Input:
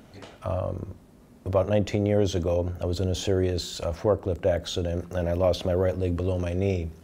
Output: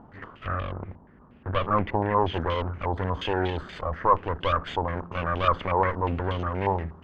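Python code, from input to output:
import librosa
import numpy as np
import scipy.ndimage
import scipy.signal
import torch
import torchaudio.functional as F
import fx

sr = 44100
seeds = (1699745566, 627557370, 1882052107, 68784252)

y = fx.lower_of_two(x, sr, delay_ms=0.64)
y = fx.air_absorb(y, sr, metres=220.0, at=(0.46, 2.34))
y = fx.filter_held_lowpass(y, sr, hz=8.4, low_hz=890.0, high_hz=3200.0)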